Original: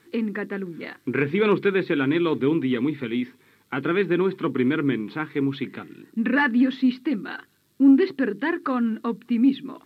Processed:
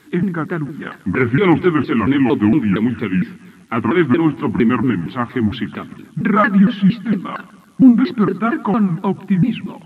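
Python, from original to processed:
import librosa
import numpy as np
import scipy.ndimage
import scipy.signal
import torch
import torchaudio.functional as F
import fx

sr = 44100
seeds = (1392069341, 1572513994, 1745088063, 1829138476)

p1 = fx.pitch_ramps(x, sr, semitones=-6.5, every_ms=230)
p2 = p1 + fx.echo_feedback(p1, sr, ms=141, feedback_pct=59, wet_db=-21.0, dry=0)
y = p2 * 10.0 ** (8.5 / 20.0)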